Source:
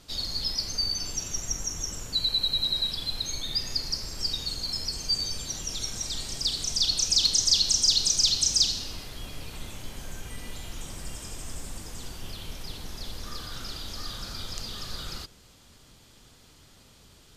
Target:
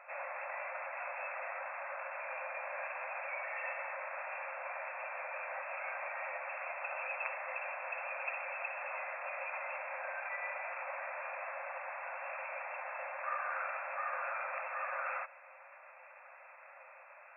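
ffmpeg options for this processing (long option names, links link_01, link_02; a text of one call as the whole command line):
ffmpeg -i in.wav -af "afftfilt=real='re*between(b*sr/4096,510,2700)':imag='im*between(b*sr/4096,510,2700)':win_size=4096:overlap=0.75,volume=9dB" out.wav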